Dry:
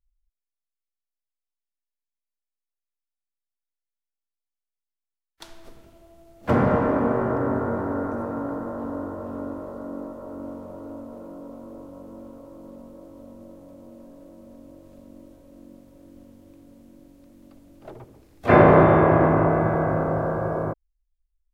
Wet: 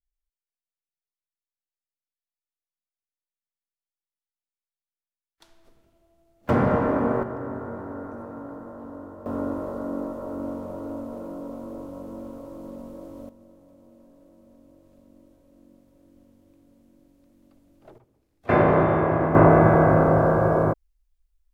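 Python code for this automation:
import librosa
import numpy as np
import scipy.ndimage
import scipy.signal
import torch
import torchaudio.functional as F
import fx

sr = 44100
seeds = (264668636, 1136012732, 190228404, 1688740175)

y = fx.gain(x, sr, db=fx.steps((0.0, -12.5), (6.49, -1.0), (7.23, -8.5), (9.26, 4.0), (13.29, -8.0), (17.98, -16.5), (18.49, -5.0), (19.35, 6.0)))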